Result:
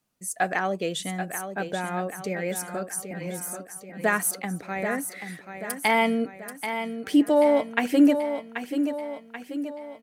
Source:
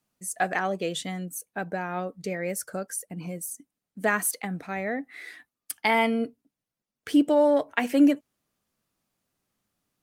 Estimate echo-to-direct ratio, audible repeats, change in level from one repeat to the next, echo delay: −7.0 dB, 5, −5.5 dB, 784 ms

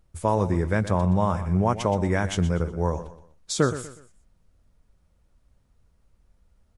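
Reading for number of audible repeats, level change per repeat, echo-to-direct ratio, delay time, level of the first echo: 3, −9.5 dB, −12.5 dB, 122 ms, −13.0 dB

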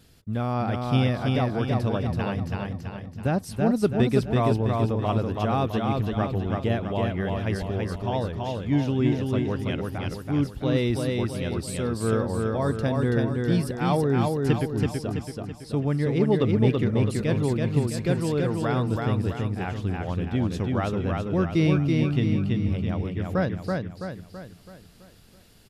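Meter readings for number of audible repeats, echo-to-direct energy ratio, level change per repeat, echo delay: 6, −2.0 dB, −6.5 dB, 330 ms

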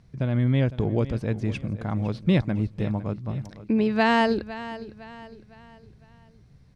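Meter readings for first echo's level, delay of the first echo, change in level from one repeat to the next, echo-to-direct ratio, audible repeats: −15.0 dB, 507 ms, −7.5 dB, −14.0 dB, 3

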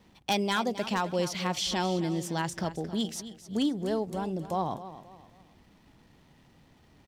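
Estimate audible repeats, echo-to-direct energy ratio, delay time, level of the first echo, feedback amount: 3, −13.0 dB, 266 ms, −13.5 dB, 35%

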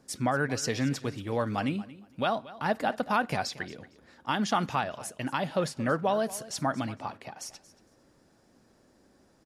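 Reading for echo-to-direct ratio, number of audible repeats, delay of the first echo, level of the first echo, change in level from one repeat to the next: −18.0 dB, 2, 229 ms, −18.0 dB, −14.5 dB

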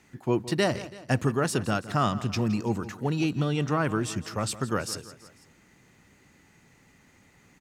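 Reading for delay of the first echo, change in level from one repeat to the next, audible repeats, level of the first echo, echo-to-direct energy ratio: 166 ms, −5.5 dB, 3, −16.0 dB, −14.5 dB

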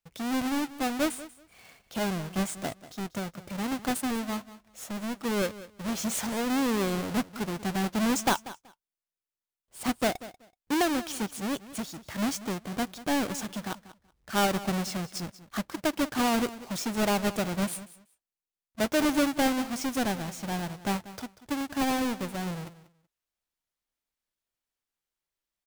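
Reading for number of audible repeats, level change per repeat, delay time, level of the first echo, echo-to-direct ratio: 2, −15.0 dB, 189 ms, −16.5 dB, −16.5 dB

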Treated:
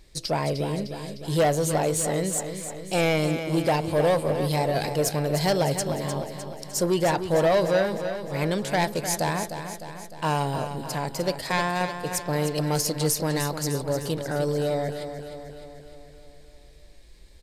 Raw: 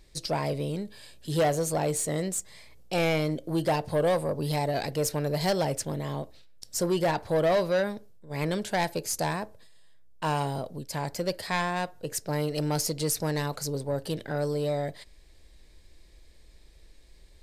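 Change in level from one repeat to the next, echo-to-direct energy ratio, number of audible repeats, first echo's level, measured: −4.5 dB, −7.0 dB, 6, −9.0 dB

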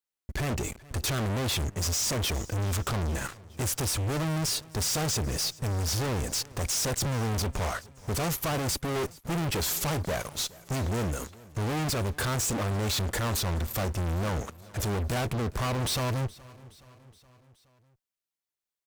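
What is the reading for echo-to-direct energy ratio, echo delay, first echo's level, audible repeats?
−20.5 dB, 421 ms, −22.0 dB, 3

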